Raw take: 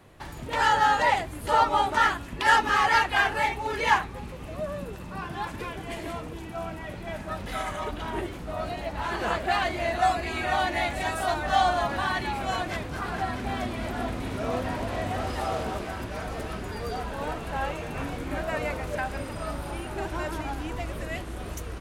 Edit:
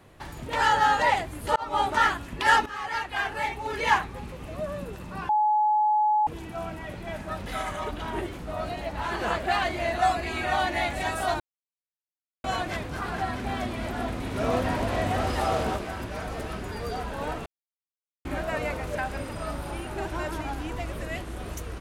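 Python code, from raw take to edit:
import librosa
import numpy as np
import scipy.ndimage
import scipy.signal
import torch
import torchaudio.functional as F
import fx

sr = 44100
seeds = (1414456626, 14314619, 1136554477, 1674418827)

y = fx.edit(x, sr, fx.fade_in_span(start_s=1.56, length_s=0.27),
    fx.fade_in_from(start_s=2.66, length_s=1.31, floor_db=-15.5),
    fx.bleep(start_s=5.29, length_s=0.98, hz=849.0, db=-19.0),
    fx.silence(start_s=11.4, length_s=1.04),
    fx.clip_gain(start_s=14.36, length_s=1.4, db=3.5),
    fx.silence(start_s=17.46, length_s=0.79), tone=tone)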